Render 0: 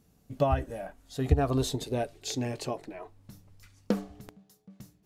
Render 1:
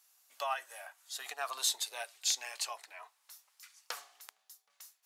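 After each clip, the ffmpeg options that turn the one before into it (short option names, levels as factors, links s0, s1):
-af "highpass=f=940:w=0.5412,highpass=f=940:w=1.3066,equalizer=f=12000:t=o:w=2.5:g=7.5"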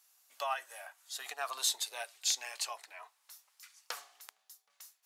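-af anull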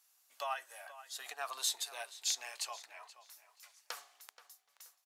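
-filter_complex "[0:a]asplit=2[s0][s1];[s1]adelay=478,lowpass=f=4600:p=1,volume=0.178,asplit=2[s2][s3];[s3]adelay=478,lowpass=f=4600:p=1,volume=0.3,asplit=2[s4][s5];[s5]adelay=478,lowpass=f=4600:p=1,volume=0.3[s6];[s0][s2][s4][s6]amix=inputs=4:normalize=0,volume=0.708"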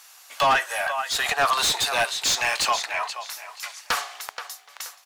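-filter_complex "[0:a]asplit=2[s0][s1];[s1]highpass=f=720:p=1,volume=20,asoftclip=type=tanh:threshold=0.119[s2];[s0][s2]amix=inputs=2:normalize=0,lowpass=f=3300:p=1,volume=0.501,volume=2.66"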